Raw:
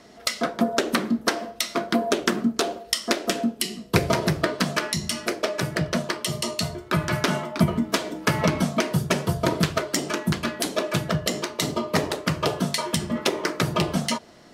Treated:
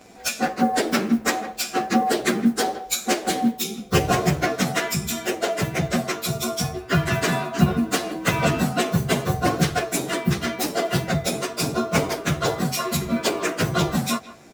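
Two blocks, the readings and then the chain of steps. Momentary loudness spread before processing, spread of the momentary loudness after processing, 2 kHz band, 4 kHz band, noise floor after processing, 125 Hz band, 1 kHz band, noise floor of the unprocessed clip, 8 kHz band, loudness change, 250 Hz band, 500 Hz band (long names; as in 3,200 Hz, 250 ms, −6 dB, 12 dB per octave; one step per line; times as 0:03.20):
4 LU, 4 LU, +2.0 dB, −0.5 dB, −40 dBFS, +2.5 dB, +4.0 dB, −46 dBFS, +2.5 dB, +2.0 dB, +2.0 dB, +1.5 dB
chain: partials spread apart or drawn together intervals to 109%
noise that follows the level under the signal 33 dB
far-end echo of a speakerphone 160 ms, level −16 dB
level +5.5 dB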